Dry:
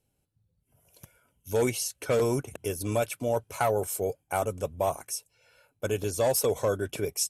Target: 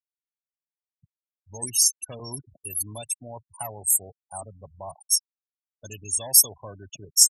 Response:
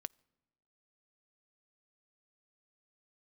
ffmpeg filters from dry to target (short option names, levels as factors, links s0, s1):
-af "aecho=1:1:1.1:0.6,afftfilt=real='re*gte(hypot(re,im),0.0398)':imag='im*gte(hypot(re,im),0.0398)':win_size=1024:overlap=0.75,aexciter=amount=12.6:drive=5.2:freq=3200,volume=0.266"